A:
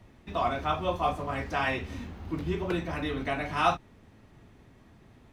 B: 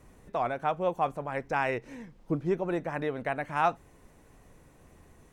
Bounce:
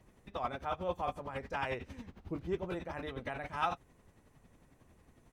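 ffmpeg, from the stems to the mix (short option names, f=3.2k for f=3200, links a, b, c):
-filter_complex "[0:a]aeval=exprs='val(0)*pow(10,-23*(0.5-0.5*cos(2*PI*11*n/s))/20)':c=same,volume=-5.5dB[a];[1:a]adelay=6.2,volume=-9.5dB[b];[a][b]amix=inputs=2:normalize=0"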